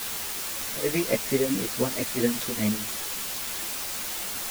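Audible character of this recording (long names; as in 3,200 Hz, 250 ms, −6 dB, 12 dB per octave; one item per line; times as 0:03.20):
tremolo triangle 4.6 Hz, depth 90%
a quantiser's noise floor 6 bits, dither triangular
a shimmering, thickened sound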